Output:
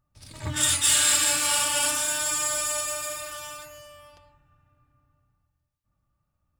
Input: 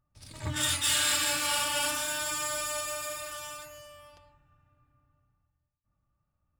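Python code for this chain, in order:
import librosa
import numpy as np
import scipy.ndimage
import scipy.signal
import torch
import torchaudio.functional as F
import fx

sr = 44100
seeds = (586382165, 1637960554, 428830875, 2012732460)

y = fx.dynamic_eq(x, sr, hz=8200.0, q=1.3, threshold_db=-43.0, ratio=4.0, max_db=7)
y = y * 10.0 ** (2.5 / 20.0)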